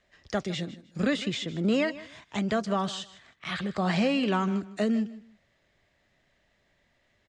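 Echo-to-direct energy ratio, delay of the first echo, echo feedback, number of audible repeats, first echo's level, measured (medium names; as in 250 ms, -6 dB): -17.0 dB, 155 ms, 22%, 2, -17.0 dB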